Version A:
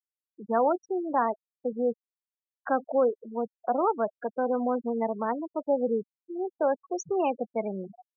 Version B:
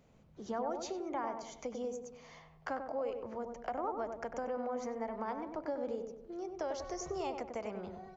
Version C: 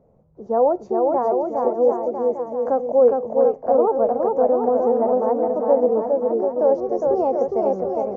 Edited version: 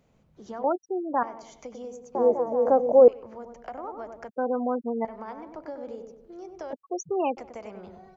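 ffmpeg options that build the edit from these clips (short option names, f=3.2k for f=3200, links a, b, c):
-filter_complex "[0:a]asplit=3[a][b][c];[1:a]asplit=5[d][e][f][g][h];[d]atrim=end=0.642[i];[a]atrim=start=0.638:end=1.232[j];[e]atrim=start=1.228:end=2.152[k];[2:a]atrim=start=2.148:end=3.082[l];[f]atrim=start=3.078:end=4.292[m];[b]atrim=start=4.288:end=5.052[n];[g]atrim=start=5.048:end=6.732[o];[c]atrim=start=6.728:end=7.372[p];[h]atrim=start=7.368[q];[i][j]acrossfade=d=0.004:c1=hsin:c2=hsin[r];[r][k]acrossfade=d=0.004:c1=hsin:c2=hsin[s];[s][l]acrossfade=d=0.004:c1=hsin:c2=hsin[t];[t][m]acrossfade=d=0.004:c1=hsin:c2=hsin[u];[u][n]acrossfade=d=0.004:c1=hsin:c2=hsin[v];[v][o]acrossfade=d=0.004:c1=hsin:c2=hsin[w];[w][p]acrossfade=d=0.004:c1=hsin:c2=hsin[x];[x][q]acrossfade=d=0.004:c1=hsin:c2=hsin"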